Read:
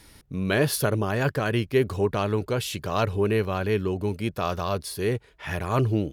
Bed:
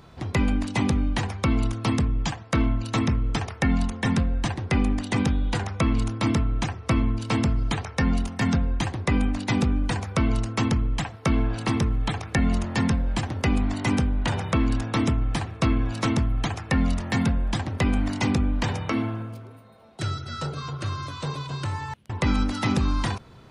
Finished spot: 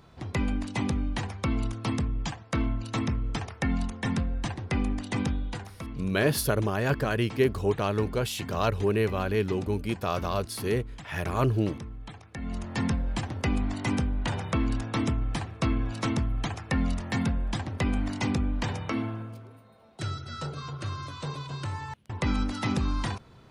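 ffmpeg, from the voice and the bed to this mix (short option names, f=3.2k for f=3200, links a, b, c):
-filter_complex "[0:a]adelay=5650,volume=-2dB[a];[1:a]volume=6.5dB,afade=t=out:st=5.32:d=0.42:silence=0.281838,afade=t=in:st=12.37:d=0.49:silence=0.251189[b];[a][b]amix=inputs=2:normalize=0"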